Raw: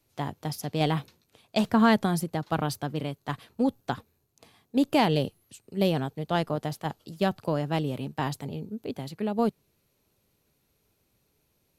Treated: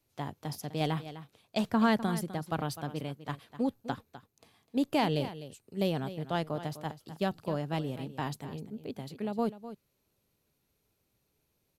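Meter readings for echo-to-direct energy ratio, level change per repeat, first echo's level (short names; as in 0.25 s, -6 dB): -13.5 dB, no steady repeat, -13.5 dB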